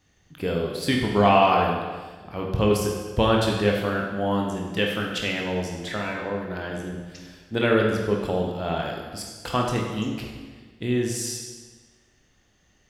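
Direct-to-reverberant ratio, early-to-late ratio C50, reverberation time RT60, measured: -1.0 dB, 2.5 dB, 1.4 s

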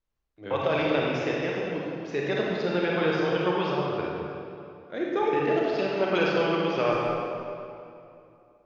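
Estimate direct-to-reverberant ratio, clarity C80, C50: -4.0 dB, -0.5 dB, -2.5 dB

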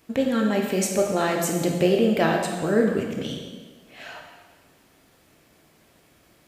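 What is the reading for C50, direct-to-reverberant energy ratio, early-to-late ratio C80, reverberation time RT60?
4.0 dB, 1.5 dB, 5.5 dB, 1.4 s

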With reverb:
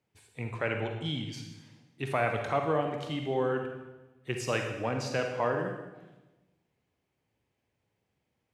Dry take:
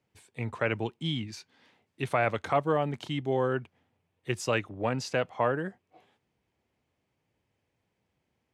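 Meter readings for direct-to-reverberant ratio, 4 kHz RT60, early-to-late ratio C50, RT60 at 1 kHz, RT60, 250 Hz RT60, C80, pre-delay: 3.5 dB, 1.0 s, 4.5 dB, 1.0 s, 1.1 s, 1.4 s, 7.5 dB, 38 ms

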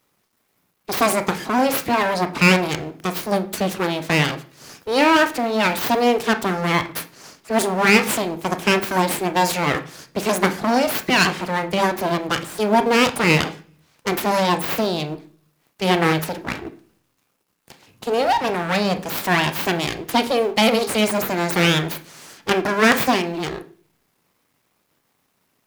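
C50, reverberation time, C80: 15.5 dB, 0.45 s, 20.0 dB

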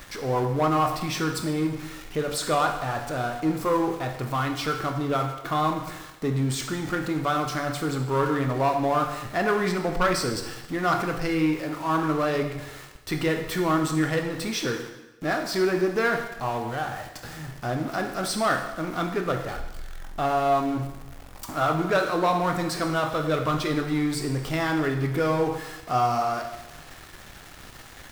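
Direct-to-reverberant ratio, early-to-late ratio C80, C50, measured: 4.0 dB, 9.0 dB, 7.0 dB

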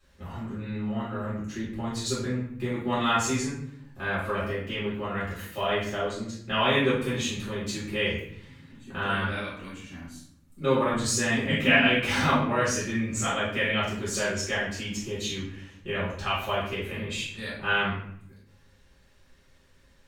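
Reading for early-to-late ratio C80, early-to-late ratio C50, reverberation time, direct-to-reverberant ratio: 6.5 dB, 1.5 dB, 0.65 s, -9.5 dB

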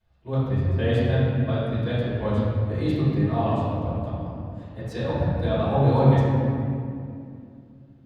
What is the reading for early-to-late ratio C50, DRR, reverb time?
-3.5 dB, -16.5 dB, 2.5 s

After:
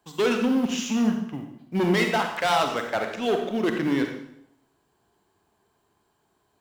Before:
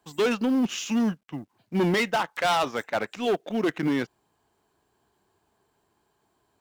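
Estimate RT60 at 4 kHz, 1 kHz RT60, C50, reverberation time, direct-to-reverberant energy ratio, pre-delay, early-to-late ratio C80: 0.65 s, 0.70 s, 5.0 dB, 0.75 s, 4.0 dB, 39 ms, 8.5 dB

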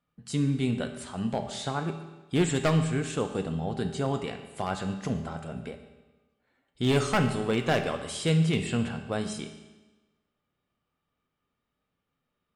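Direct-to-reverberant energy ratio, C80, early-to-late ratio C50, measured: 5.5 dB, 10.0 dB, 8.5 dB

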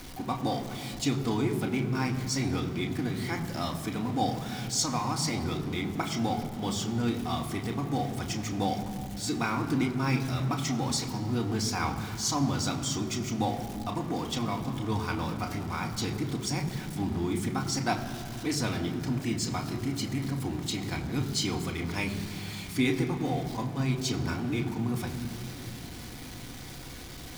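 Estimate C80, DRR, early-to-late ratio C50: 9.5 dB, 2.0 dB, 8.5 dB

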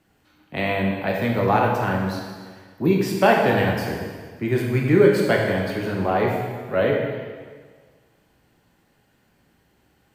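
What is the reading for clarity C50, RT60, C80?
2.0 dB, 1.6 s, 3.5 dB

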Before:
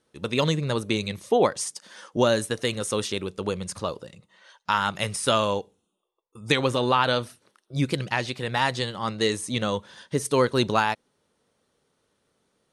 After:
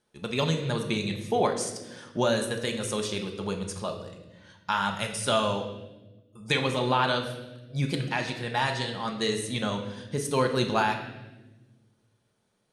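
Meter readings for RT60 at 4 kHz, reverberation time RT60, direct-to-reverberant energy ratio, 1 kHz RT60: 1.0 s, 1.1 s, 3.0 dB, 0.85 s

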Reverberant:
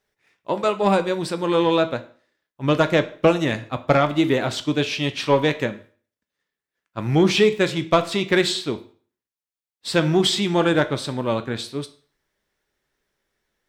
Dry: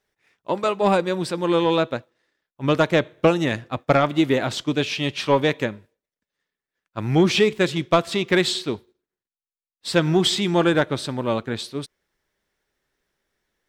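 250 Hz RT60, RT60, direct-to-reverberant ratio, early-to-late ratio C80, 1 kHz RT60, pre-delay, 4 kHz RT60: 0.45 s, 0.45 s, 10.0 dB, 19.5 dB, 0.45 s, 11 ms, 0.40 s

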